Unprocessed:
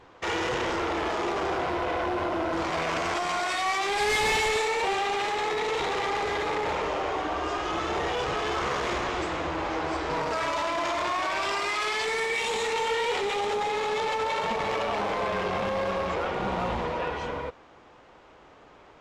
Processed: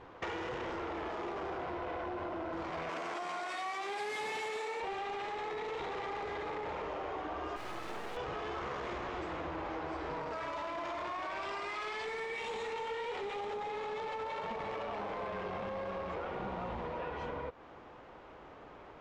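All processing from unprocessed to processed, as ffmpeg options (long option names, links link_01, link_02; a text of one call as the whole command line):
ffmpeg -i in.wav -filter_complex "[0:a]asettb=1/sr,asplit=3[link_01][link_02][link_03];[link_01]atrim=end=2.894[link_04];[link_02]atrim=start=2.89:end=4.8,asetpts=PTS-STARTPTS,afade=type=in:duration=0.004:curve=qsin,afade=type=out:start_time=1.906:duration=0.004:curve=qsin,highpass=210,equalizer=frequency=11000:width=0.83:gain=8.5[link_05];[link_03]atrim=start=4.796[link_06];[link_04][link_05]acrossfade=duration=0.004:curve1=hsin:curve2=qsin[link_07];[link_07][link_06]acrossfade=duration=0.004:curve1=qsin:curve2=hsin,asettb=1/sr,asplit=3[link_08][link_09][link_10];[link_08]atrim=end=7.564[link_11];[link_09]atrim=start=7.56:end=8.17,asetpts=PTS-STARTPTS,afade=type=in:duration=0.004:curve=qsin,afade=type=out:start_time=0.606:duration=0.004:curve=qsin,highpass=320,acrusher=bits=3:dc=4:mix=0:aa=0.000001[link_12];[link_10]atrim=start=8.166[link_13];[link_11][link_12]acrossfade=duration=0.004:curve1=hsin:curve2=qsin[link_14];[link_14][link_13]acrossfade=duration=0.004:curve1=qsin:curve2=hsin,aemphasis=mode=reproduction:type=75kf,acompressor=threshold=-38dB:ratio=6,volume=1dB" out.wav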